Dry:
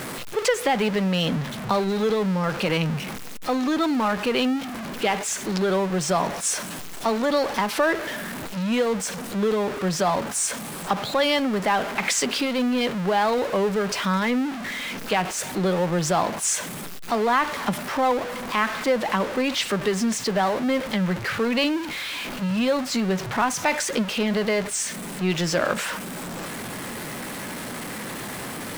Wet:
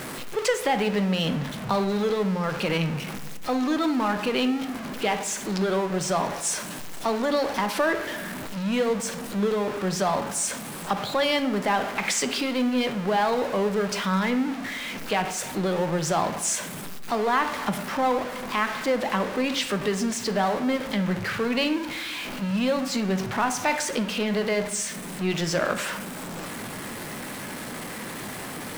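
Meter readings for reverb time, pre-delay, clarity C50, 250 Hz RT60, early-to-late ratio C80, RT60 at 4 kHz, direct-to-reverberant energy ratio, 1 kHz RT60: 0.90 s, 16 ms, 11.5 dB, 1.3 s, 13.5 dB, 0.50 s, 9.0 dB, 0.85 s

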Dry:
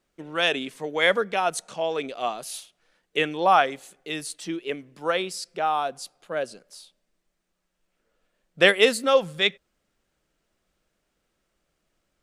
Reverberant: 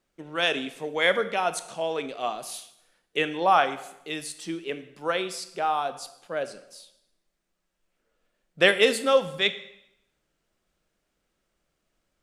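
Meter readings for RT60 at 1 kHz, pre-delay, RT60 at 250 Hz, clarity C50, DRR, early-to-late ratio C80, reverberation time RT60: 0.80 s, 7 ms, 0.80 s, 13.5 dB, 11.0 dB, 16.5 dB, 0.85 s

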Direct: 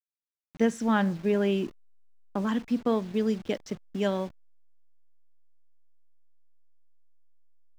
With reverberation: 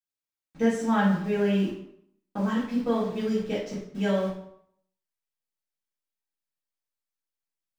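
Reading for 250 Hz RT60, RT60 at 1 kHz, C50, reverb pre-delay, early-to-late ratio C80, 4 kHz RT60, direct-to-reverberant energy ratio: 0.65 s, 0.65 s, 3.5 dB, 3 ms, 7.0 dB, 0.55 s, -8.5 dB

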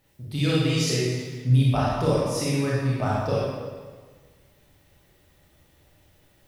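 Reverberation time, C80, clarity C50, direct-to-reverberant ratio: 1.5 s, 0.5 dB, -3.0 dB, -7.0 dB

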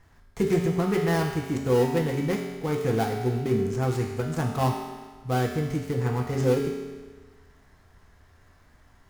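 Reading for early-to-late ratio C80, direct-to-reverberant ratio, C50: 5.0 dB, -0.5 dB, 3.0 dB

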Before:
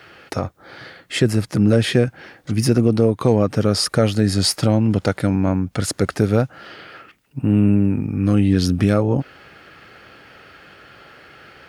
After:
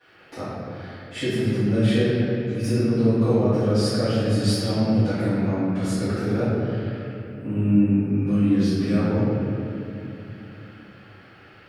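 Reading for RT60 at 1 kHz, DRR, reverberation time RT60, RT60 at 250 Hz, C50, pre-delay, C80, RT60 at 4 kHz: 2.5 s, -19.0 dB, 2.9 s, 4.0 s, -5.0 dB, 5 ms, -2.5 dB, 1.7 s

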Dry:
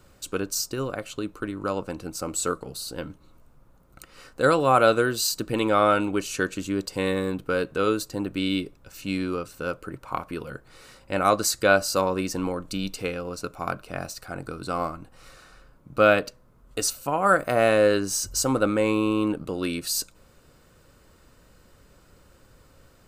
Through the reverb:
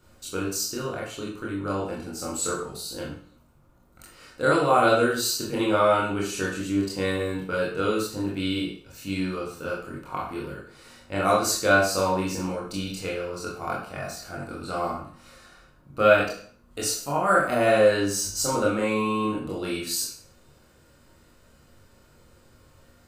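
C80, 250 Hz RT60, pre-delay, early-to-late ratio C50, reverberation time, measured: 7.5 dB, 0.50 s, 21 ms, 3.5 dB, 0.50 s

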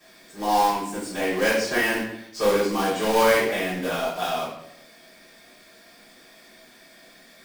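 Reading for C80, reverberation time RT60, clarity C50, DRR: 6.0 dB, 0.80 s, 1.5 dB, -12.0 dB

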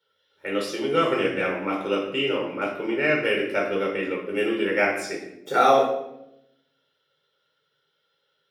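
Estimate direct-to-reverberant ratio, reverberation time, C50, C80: -2.0 dB, 0.80 s, 5.0 dB, 8.0 dB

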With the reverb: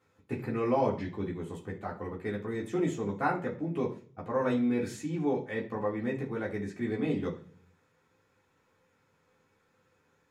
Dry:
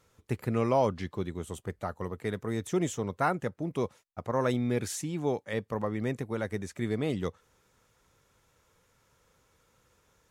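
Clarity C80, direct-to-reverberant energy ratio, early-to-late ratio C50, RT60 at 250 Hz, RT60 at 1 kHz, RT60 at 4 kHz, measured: 16.0 dB, -4.0 dB, 11.0 dB, 0.70 s, 0.40 s, 0.55 s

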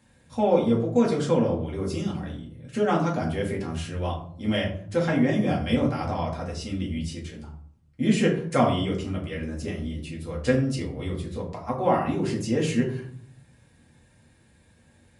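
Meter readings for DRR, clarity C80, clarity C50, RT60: -3.5 dB, 11.0 dB, 7.5 dB, 0.55 s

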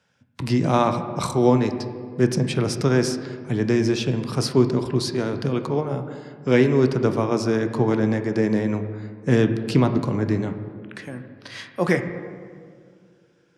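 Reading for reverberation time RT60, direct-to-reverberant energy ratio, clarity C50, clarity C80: 2.2 s, 7.5 dB, 9.5 dB, 10.5 dB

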